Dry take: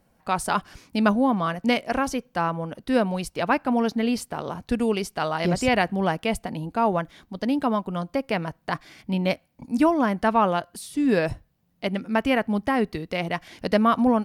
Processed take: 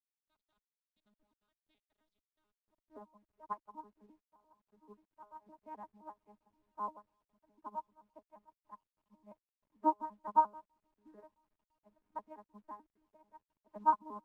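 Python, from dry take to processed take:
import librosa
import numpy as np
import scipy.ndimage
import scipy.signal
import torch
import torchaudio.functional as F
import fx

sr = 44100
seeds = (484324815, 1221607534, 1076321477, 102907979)

y = fx.vocoder_arp(x, sr, chord='bare fifth', root=56, every_ms=87)
y = fx.bandpass_q(y, sr, hz=fx.steps((0.0, 3800.0), (2.68, 1000.0)), q=10.0)
y = fx.echo_heads(y, sr, ms=334, heads='first and third', feedback_pct=51, wet_db=-23.5)
y = fx.quant_dither(y, sr, seeds[0], bits=10, dither='none')
y = fx.tilt_eq(y, sr, slope=-3.5)
y = fx.upward_expand(y, sr, threshold_db=-48.0, expansion=2.5)
y = y * librosa.db_to_amplitude(7.0)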